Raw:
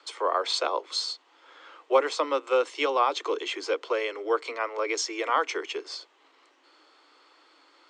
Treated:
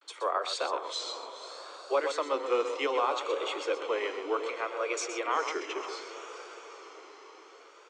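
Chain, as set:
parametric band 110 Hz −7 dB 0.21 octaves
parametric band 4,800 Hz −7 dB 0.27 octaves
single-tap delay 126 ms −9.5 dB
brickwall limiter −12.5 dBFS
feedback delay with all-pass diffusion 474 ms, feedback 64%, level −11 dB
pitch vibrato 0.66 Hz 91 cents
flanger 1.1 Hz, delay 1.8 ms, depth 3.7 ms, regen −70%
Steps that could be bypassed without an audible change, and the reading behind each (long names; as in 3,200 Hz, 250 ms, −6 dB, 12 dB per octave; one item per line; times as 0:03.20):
parametric band 110 Hz: nothing at its input below 250 Hz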